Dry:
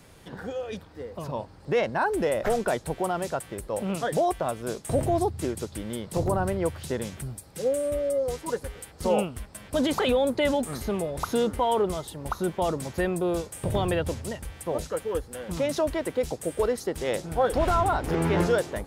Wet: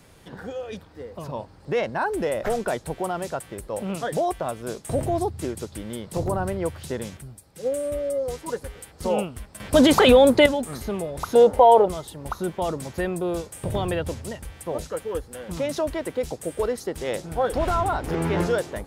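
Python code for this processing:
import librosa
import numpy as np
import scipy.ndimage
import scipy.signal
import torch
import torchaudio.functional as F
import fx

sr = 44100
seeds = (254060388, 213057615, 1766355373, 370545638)

y = fx.upward_expand(x, sr, threshold_db=-33.0, expansion=1.5, at=(7.17, 7.72))
y = fx.band_shelf(y, sr, hz=650.0, db=13.0, octaves=1.2, at=(11.35, 11.88))
y = fx.edit(y, sr, fx.clip_gain(start_s=9.6, length_s=0.86, db=9.5), tone=tone)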